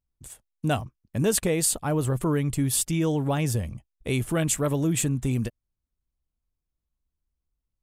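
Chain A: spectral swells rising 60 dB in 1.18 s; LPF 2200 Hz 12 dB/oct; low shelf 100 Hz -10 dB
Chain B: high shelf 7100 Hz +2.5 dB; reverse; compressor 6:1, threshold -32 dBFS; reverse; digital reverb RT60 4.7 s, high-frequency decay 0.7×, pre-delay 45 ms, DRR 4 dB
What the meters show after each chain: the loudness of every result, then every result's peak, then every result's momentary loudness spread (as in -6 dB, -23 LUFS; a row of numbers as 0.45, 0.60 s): -26.5, -34.5 LUFS; -10.0, -18.5 dBFS; 8, 13 LU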